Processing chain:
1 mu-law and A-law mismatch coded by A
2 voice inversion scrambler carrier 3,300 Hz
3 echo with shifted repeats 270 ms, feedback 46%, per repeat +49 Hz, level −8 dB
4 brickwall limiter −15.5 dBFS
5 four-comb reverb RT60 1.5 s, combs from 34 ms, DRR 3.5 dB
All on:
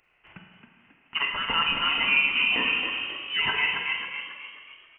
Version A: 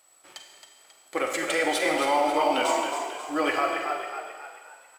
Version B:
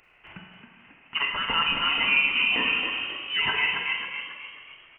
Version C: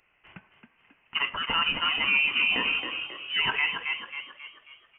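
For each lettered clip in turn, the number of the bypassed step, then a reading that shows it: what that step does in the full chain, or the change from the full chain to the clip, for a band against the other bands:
2, 500 Hz band +17.0 dB
1, distortion level −26 dB
5, change in momentary loudness spread +2 LU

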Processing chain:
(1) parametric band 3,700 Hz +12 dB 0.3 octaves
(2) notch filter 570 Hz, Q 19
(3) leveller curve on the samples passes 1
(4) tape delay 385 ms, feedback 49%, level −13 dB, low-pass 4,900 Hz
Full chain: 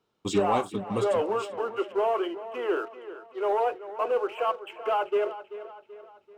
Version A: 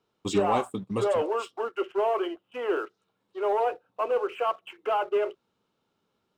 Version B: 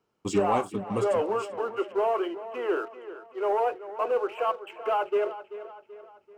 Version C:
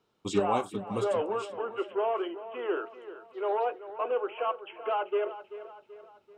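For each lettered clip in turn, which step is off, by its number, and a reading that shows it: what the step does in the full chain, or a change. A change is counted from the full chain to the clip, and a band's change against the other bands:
4, echo-to-direct ratio −20.5 dB to none audible
1, 4 kHz band −3.5 dB
3, change in crest factor +3.5 dB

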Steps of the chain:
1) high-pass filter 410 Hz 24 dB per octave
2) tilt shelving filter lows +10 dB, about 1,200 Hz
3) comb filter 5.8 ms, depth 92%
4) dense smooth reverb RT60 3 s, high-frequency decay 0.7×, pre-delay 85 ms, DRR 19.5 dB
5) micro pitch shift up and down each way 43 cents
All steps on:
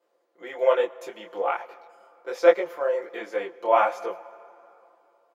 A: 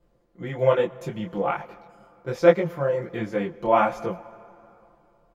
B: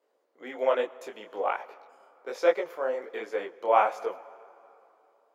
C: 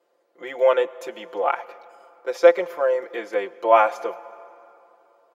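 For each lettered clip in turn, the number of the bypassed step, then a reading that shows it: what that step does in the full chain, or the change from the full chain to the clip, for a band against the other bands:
1, 250 Hz band +10.0 dB
3, 1 kHz band +2.0 dB
5, change in momentary loudness spread −3 LU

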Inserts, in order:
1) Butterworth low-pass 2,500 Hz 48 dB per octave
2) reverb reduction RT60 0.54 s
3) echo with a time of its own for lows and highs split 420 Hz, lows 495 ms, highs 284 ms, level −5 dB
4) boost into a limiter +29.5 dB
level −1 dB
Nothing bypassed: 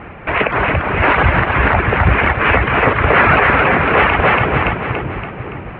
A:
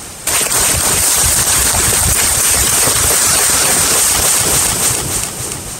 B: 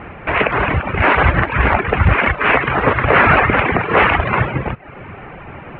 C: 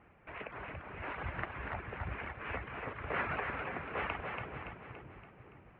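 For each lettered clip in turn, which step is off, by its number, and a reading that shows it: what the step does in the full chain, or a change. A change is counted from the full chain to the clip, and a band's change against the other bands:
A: 1, 4 kHz band +18.0 dB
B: 3, change in momentary loudness spread +8 LU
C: 4, change in crest factor +9.0 dB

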